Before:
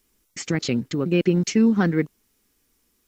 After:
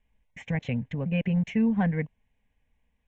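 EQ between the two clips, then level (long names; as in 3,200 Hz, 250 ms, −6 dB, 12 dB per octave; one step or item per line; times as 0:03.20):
low-pass filter 2,600 Hz 12 dB per octave
low-shelf EQ 120 Hz +7 dB
phaser with its sweep stopped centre 1,300 Hz, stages 6
−2.0 dB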